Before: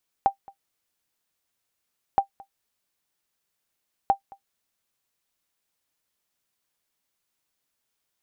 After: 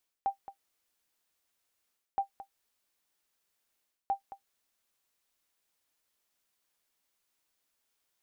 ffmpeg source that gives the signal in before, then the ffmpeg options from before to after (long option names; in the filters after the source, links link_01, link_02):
-f lavfi -i "aevalsrc='0.335*(sin(2*PI*789*mod(t,1.92))*exp(-6.91*mod(t,1.92)/0.1)+0.0562*sin(2*PI*789*max(mod(t,1.92)-0.22,0))*exp(-6.91*max(mod(t,1.92)-0.22,0)/0.1))':duration=5.76:sample_rate=44100"
-af "equalizer=frequency=130:width_type=o:width=1.2:gain=-7,areverse,acompressor=threshold=-31dB:ratio=6,areverse"